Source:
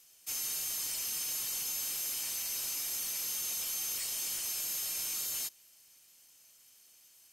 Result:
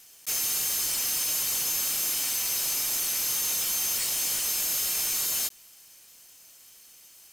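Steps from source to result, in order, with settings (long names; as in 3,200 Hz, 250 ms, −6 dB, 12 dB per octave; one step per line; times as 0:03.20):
one scale factor per block 3 bits
level +8 dB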